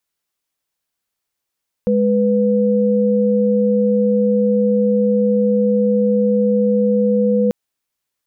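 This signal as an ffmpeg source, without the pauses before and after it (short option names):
-f lavfi -i "aevalsrc='0.178*(sin(2*PI*207.65*t)+sin(2*PI*493.88*t))':d=5.64:s=44100"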